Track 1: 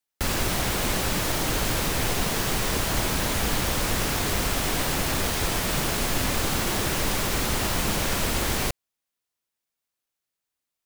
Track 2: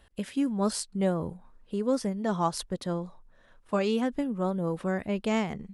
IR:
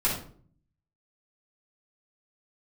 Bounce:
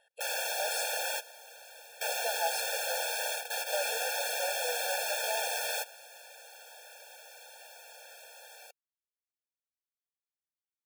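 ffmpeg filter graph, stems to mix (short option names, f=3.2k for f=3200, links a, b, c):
-filter_complex "[0:a]volume=-2.5dB[a];[1:a]tremolo=f=62:d=0.333,volume=-0.5dB,asplit=3[b][c][d];[b]atrim=end=1,asetpts=PTS-STARTPTS,afade=t=out:st=0.996:d=0.004:c=hsin[e];[c]atrim=start=1:end=2.01,asetpts=PTS-STARTPTS,volume=0[f];[d]atrim=start=2.01,asetpts=PTS-STARTPTS,afade=t=in:d=0.004:c=hsin[g];[e][f][g]concat=n=3:v=0:a=1,asplit=2[h][i];[i]apad=whole_len=478803[j];[a][j]sidechaingate=range=-18dB:threshold=-59dB:ratio=16:detection=peak[k];[k][h]amix=inputs=2:normalize=0,highpass=480,afftfilt=real='re*eq(mod(floor(b*sr/1024/460),2),1)':imag='im*eq(mod(floor(b*sr/1024/460),2),1)':win_size=1024:overlap=0.75"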